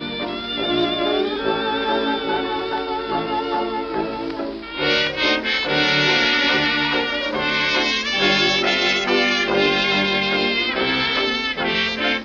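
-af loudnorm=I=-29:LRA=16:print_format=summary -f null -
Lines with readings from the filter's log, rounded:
Input Integrated:    -18.8 LUFS
Input True Peak:      -4.9 dBTP
Input LRA:             4.7 LU
Input Threshold:     -28.8 LUFS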